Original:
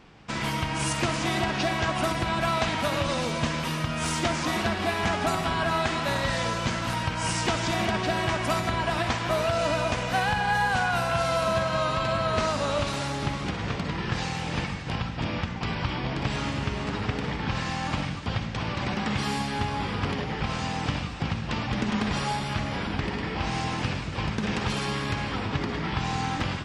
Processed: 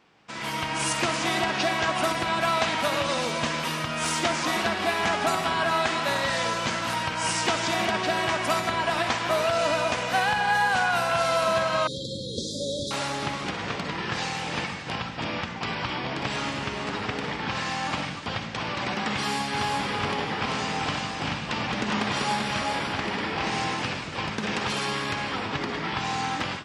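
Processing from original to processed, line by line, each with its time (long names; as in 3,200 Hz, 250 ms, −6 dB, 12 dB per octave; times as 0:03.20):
0:11.87–0:12.91: linear-phase brick-wall band-stop 580–3,200 Hz
0:19.14–0:23.73: single-tap delay 389 ms −4 dB
whole clip: high-pass filter 360 Hz 6 dB per octave; automatic gain control gain up to 9 dB; level −6 dB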